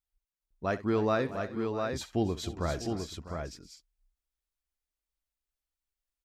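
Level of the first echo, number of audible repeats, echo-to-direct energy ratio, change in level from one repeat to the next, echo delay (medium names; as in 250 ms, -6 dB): -15.5 dB, 4, -4.0 dB, no regular repeats, 65 ms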